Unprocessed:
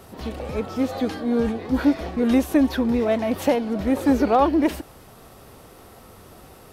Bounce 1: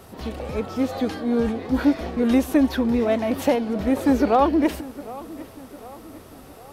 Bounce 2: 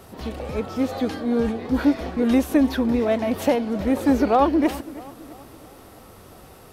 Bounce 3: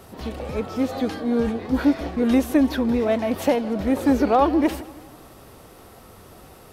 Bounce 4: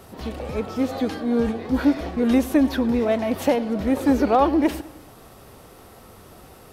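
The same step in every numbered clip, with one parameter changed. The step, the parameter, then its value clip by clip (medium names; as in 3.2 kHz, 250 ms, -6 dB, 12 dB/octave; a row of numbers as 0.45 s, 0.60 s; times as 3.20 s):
tape echo, time: 755 ms, 328 ms, 162 ms, 104 ms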